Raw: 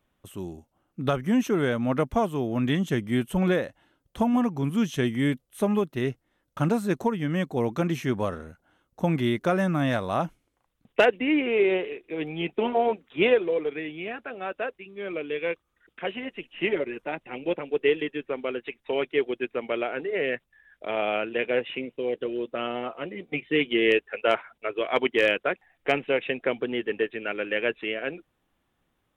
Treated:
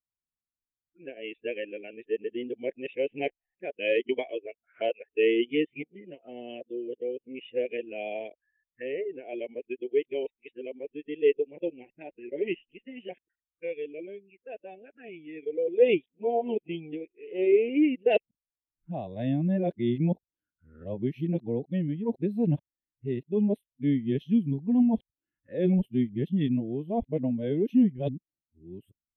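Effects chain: whole clip reversed; envelope phaser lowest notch 590 Hz, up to 1300 Hz, full sweep at -30 dBFS; spectral expander 1.5:1

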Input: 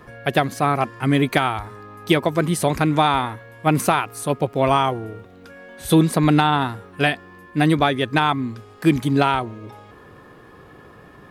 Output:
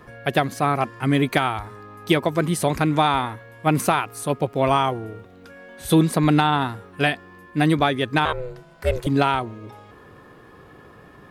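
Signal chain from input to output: 8.25–9.07 ring modulator 250 Hz; gain -1.5 dB

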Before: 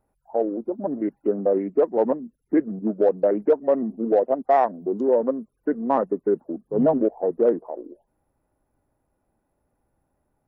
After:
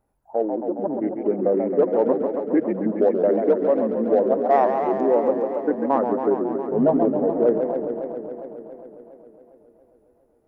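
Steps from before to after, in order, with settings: warbling echo 0.137 s, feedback 79%, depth 199 cents, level -6.5 dB

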